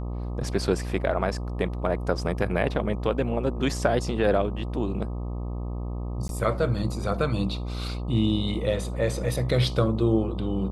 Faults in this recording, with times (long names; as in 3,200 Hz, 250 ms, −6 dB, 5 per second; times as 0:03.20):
mains buzz 60 Hz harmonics 21 −31 dBFS
0:06.28–0:06.29: drop-out 12 ms